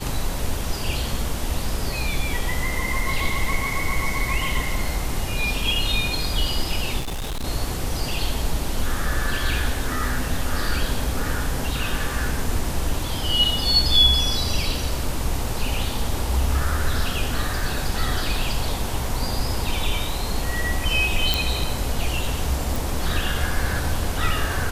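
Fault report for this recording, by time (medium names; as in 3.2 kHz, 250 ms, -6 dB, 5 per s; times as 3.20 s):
6.99–7.45 s: clipped -24.5 dBFS
21.34 s: pop
22.76 s: pop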